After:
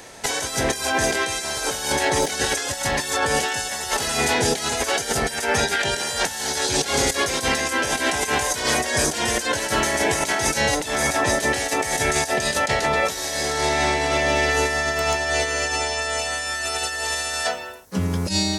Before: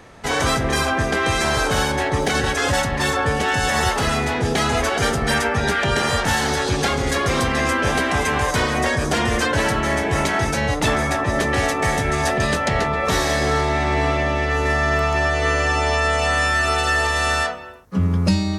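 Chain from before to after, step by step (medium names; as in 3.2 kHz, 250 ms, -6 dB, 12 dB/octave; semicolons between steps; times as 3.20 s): tone controls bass -9 dB, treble +12 dB; band-stop 1.2 kHz, Q 5.8; compressor with a negative ratio -22 dBFS, ratio -0.5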